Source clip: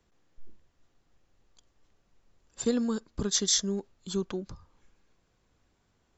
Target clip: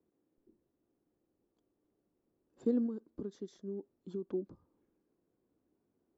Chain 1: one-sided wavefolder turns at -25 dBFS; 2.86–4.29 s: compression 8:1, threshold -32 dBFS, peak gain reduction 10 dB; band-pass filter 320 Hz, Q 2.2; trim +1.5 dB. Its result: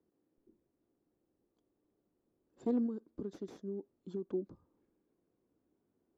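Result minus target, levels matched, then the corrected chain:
one-sided wavefolder: distortion +20 dB
one-sided wavefolder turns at -16.5 dBFS; 2.86–4.29 s: compression 8:1, threshold -32 dBFS, peak gain reduction 11 dB; band-pass filter 320 Hz, Q 2.2; trim +1.5 dB

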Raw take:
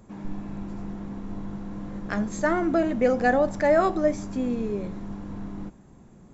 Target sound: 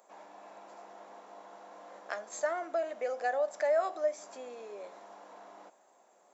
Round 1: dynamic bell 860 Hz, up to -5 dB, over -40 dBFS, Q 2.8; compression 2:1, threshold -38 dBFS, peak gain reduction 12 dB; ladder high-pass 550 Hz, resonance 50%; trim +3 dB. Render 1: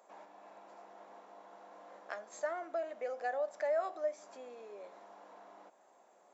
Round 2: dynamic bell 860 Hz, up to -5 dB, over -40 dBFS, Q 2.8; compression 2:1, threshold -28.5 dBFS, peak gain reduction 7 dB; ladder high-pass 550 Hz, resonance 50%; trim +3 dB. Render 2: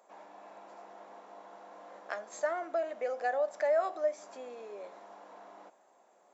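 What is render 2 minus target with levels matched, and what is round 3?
8 kHz band -4.5 dB
dynamic bell 860 Hz, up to -5 dB, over -40 dBFS, Q 2.8; compression 2:1, threshold -28.5 dBFS, peak gain reduction 7 dB; ladder high-pass 550 Hz, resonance 50%; treble shelf 6.1 kHz +8.5 dB; trim +3 dB

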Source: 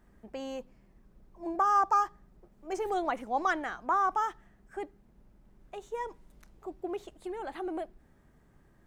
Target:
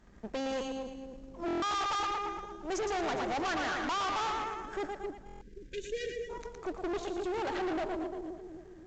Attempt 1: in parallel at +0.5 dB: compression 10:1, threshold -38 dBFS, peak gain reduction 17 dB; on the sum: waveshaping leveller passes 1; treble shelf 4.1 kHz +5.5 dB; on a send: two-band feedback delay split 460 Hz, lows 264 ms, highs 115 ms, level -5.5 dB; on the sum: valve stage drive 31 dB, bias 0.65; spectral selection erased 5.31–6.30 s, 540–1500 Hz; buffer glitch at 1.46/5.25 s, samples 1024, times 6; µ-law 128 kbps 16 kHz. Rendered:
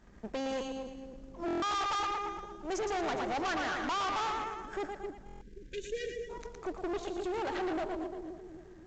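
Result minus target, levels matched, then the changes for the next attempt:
compression: peak gain reduction +7 dB
change: compression 10:1, threshold -30 dBFS, peak gain reduction 9.5 dB

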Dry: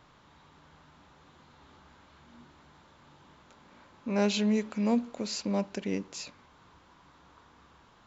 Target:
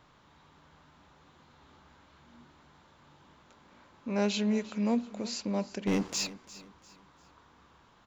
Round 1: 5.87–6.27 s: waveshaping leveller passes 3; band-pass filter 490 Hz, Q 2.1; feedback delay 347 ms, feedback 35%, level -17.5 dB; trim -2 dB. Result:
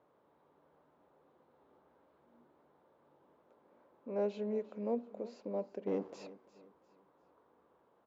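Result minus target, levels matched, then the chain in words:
500 Hz band +6.0 dB
5.87–6.27 s: waveshaping leveller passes 3; feedback delay 347 ms, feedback 35%, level -17.5 dB; trim -2 dB

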